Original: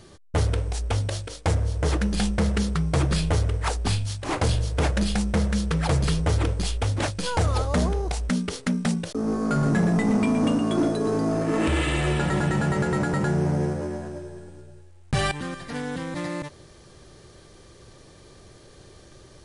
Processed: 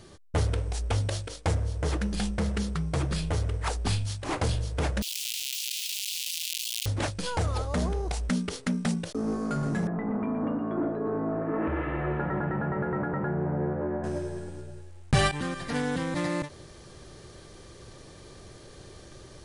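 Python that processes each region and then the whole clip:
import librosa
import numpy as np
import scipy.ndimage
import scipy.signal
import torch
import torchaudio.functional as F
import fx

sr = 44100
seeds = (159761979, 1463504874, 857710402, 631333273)

y = fx.chain(x, sr, fx.halfwave_hold(),
    fx.steep_highpass(hz=2700.0, slope=48),
    fx.env_flatten(amount_pct=100), at=(5.02, 6.86))
y = fx.chain(y, sr, fx.lowpass(hz=1700.0, slope=24),
    fx.low_shelf(hz=200.0, db=-6.5), at=(9.87, 14.04))
y = fx.rider(y, sr, range_db=10, speed_s=0.5)
y = fx.end_taper(y, sr, db_per_s=220.0)
y = F.gain(torch.from_numpy(y), -4.0).numpy()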